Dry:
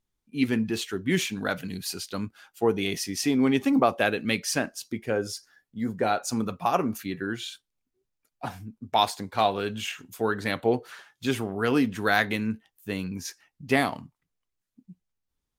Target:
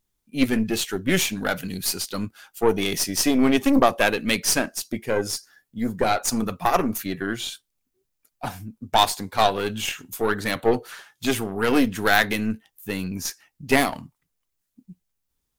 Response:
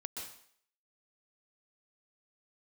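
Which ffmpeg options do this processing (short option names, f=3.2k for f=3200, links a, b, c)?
-af "crystalizer=i=1:c=0,aeval=exprs='0.531*(cos(1*acos(clip(val(0)/0.531,-1,1)))-cos(1*PI/2))+0.0422*(cos(8*acos(clip(val(0)/0.531,-1,1)))-cos(8*PI/2))':c=same,volume=3.5dB"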